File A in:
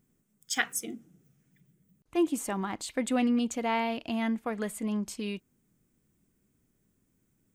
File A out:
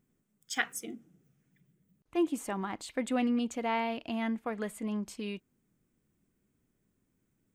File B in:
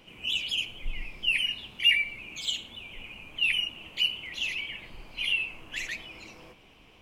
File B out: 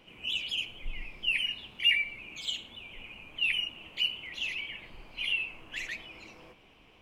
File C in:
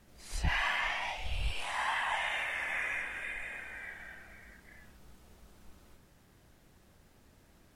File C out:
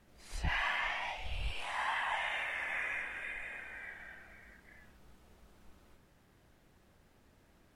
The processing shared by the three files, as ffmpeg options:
-af "bass=f=250:g=-2,treble=f=4k:g=-5,volume=-2dB"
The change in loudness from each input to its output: -3.0, -3.0, -2.5 LU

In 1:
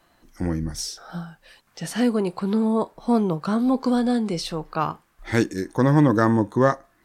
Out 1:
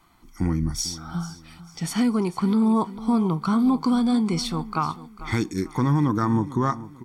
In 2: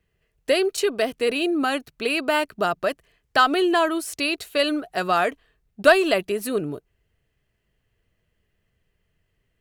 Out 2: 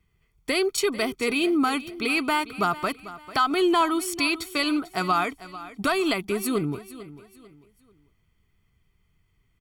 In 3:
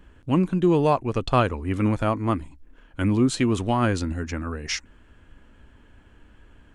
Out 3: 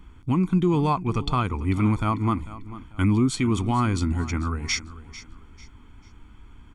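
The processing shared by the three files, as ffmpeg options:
-filter_complex "[0:a]aecho=1:1:0.9:0.73,alimiter=limit=-13dB:level=0:latency=1:release=208,asplit=2[a][b];[b]aecho=0:1:445|890|1335:0.158|0.0523|0.0173[c];[a][c]amix=inputs=2:normalize=0"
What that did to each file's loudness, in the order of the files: -1.0, -2.5, -0.5 LU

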